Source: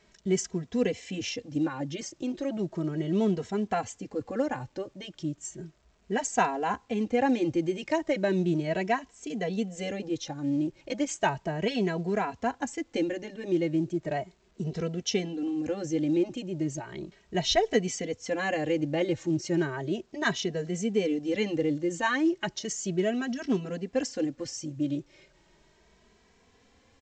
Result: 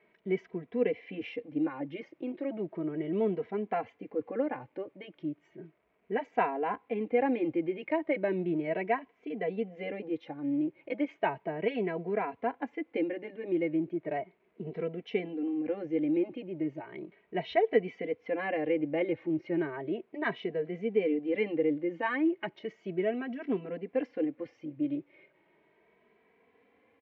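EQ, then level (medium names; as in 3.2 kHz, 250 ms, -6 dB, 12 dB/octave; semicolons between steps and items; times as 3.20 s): distance through air 100 m; cabinet simulation 170–2900 Hz, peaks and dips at 300 Hz +5 dB, 460 Hz +8 dB, 680 Hz +4 dB, 1 kHz +3 dB, 2.2 kHz +9 dB; -6.5 dB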